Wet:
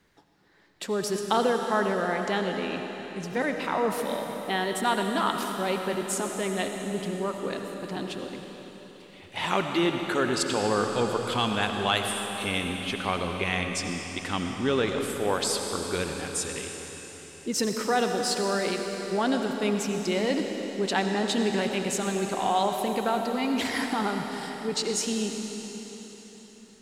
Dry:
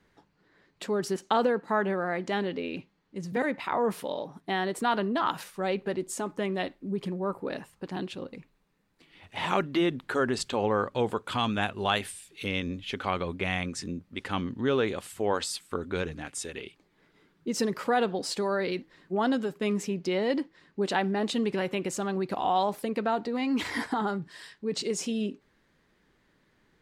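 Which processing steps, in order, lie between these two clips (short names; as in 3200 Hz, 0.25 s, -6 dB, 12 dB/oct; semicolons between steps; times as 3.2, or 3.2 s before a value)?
high shelf 3500 Hz +7 dB; reverb RT60 4.3 s, pre-delay 45 ms, DRR 3.5 dB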